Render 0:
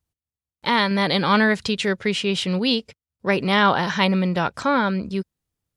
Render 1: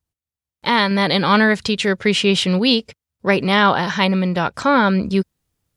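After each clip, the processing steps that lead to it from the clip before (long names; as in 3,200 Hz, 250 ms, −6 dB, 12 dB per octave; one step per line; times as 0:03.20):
automatic gain control gain up to 11 dB
level −1 dB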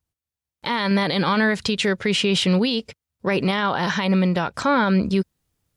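brickwall limiter −12 dBFS, peak gain reduction 10 dB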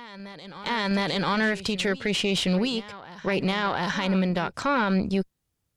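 harmonic generator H 2 −14 dB, 5 −44 dB, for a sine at −12 dBFS
backwards echo 713 ms −16 dB
level −5 dB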